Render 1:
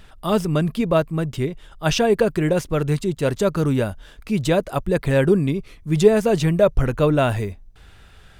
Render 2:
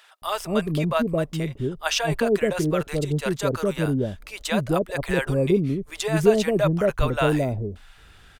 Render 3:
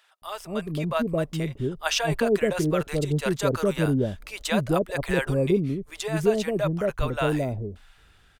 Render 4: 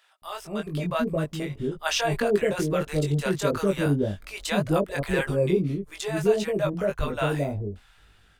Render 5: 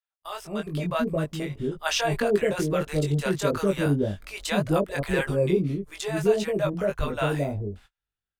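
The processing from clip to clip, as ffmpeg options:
-filter_complex "[0:a]lowshelf=f=290:g=-5,acrossover=split=610[a][b];[a]adelay=220[c];[c][b]amix=inputs=2:normalize=0"
-af "dynaudnorm=f=250:g=7:m=11.5dB,volume=-8.5dB"
-af "flanger=delay=19.5:depth=2.1:speed=1.7,volume=2.5dB"
-af "agate=range=-35dB:threshold=-47dB:ratio=16:detection=peak"

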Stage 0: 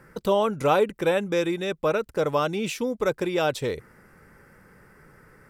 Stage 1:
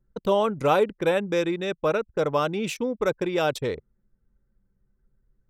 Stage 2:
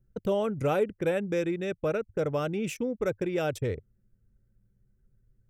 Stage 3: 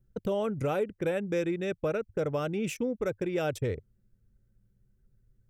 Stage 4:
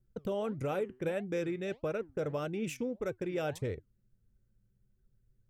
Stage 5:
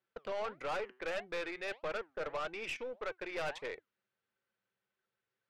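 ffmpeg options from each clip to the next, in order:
-af "anlmdn=6.31"
-filter_complex "[0:a]equalizer=f=100:t=o:w=0.67:g=12,equalizer=f=1k:t=o:w=0.67:g=-10,equalizer=f=4k:t=o:w=0.67:g=-10,asplit=2[a][b];[b]acompressor=threshold=-32dB:ratio=6,volume=-2dB[c];[a][c]amix=inputs=2:normalize=0,volume=-5.5dB"
-af "alimiter=limit=-20.5dB:level=0:latency=1:release=293"
-af "flanger=delay=2.6:depth=5.4:regen=87:speed=1.6:shape=sinusoidal"
-af "asuperpass=centerf=1600:order=4:qfactor=0.61,aeval=exprs='(tanh(126*val(0)+0.35)-tanh(0.35))/126':c=same,volume=9dB"

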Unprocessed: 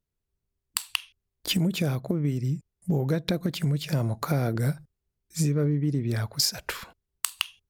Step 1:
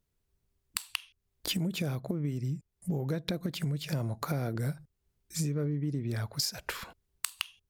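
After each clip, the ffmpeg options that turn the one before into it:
-af "acompressor=threshold=-44dB:ratio=2,volume=5dB"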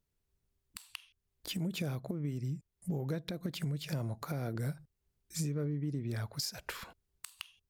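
-af "alimiter=limit=-21dB:level=0:latency=1:release=176,volume=-3.5dB"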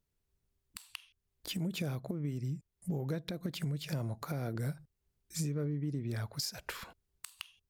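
-af anull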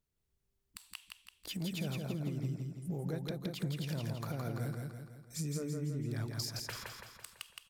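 -af "aecho=1:1:167|334|501|668|835|1002|1169:0.668|0.341|0.174|0.0887|0.0452|0.0231|0.0118,volume=-3dB"

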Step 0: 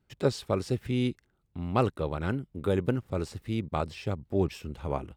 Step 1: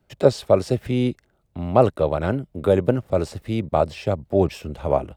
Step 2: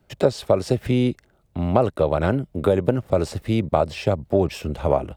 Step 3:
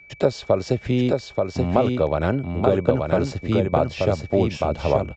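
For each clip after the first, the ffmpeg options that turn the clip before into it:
-filter_complex "[0:a]equalizer=f=620:t=o:w=0.62:g=10.5,acrossover=split=160|1200[a][b][c];[c]alimiter=level_in=7dB:limit=-24dB:level=0:latency=1:release=27,volume=-7dB[d];[a][b][d]amix=inputs=3:normalize=0,volume=6dB"
-af "acompressor=threshold=-19dB:ratio=4,volume=4.5dB"
-filter_complex "[0:a]aeval=exprs='val(0)+0.00631*sin(2*PI*2300*n/s)':c=same,aresample=16000,aresample=44100,asplit=2[a][b];[b]aecho=0:1:881:0.668[c];[a][c]amix=inputs=2:normalize=0,volume=-1dB"

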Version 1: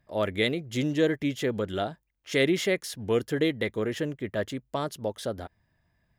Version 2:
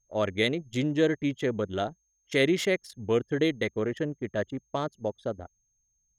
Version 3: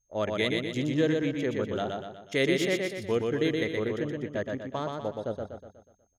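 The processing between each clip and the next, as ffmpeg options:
-af "aeval=exprs='val(0)+0.00355*sin(2*PI*6400*n/s)':c=same,anlmdn=10"
-af "aecho=1:1:122|244|366|488|610|732:0.668|0.321|0.154|0.0739|0.0355|0.017,volume=-2.5dB"

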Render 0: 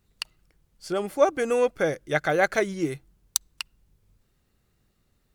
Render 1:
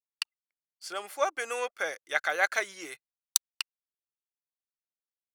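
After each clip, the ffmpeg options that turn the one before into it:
-af "highpass=1k,anlmdn=0.000251"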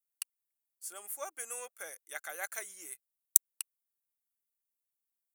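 -af "aexciter=amount=12.9:drive=3.9:freq=6.9k,volume=-14.5dB"

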